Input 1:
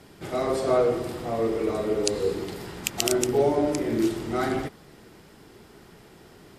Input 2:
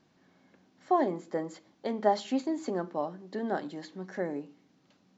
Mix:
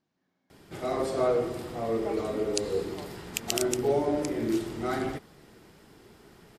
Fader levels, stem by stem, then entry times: −4.0, −13.5 decibels; 0.50, 0.00 seconds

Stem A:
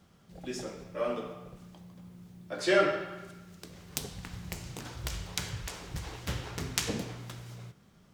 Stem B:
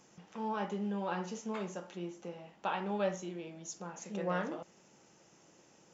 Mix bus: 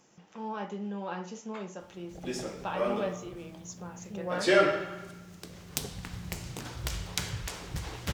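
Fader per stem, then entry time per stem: +2.0, −0.5 decibels; 1.80, 0.00 seconds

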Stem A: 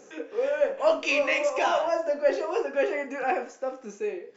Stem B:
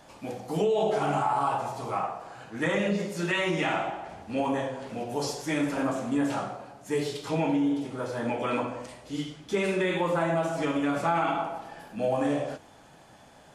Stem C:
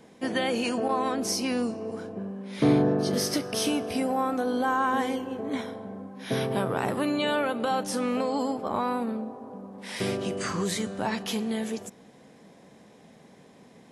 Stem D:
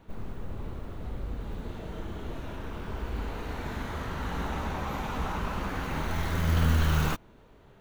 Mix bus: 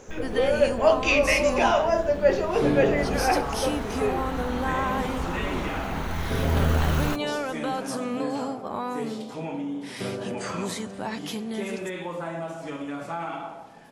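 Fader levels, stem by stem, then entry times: +3.0, −6.5, −3.0, +1.0 decibels; 0.00, 2.05, 0.00, 0.00 seconds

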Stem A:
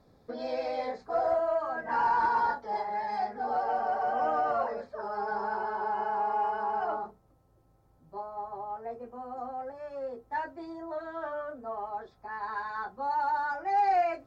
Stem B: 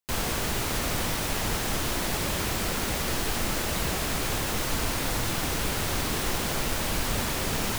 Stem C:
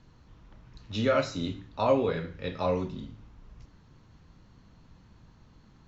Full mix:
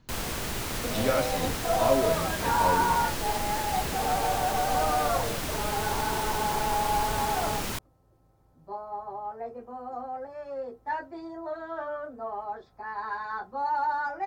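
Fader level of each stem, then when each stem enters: +1.5, −4.0, −2.0 decibels; 0.55, 0.00, 0.00 seconds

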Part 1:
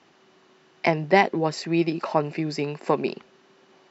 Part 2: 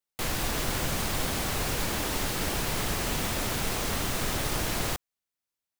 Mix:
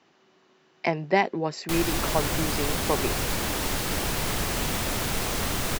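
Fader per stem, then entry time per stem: −4.0, +2.0 decibels; 0.00, 1.50 seconds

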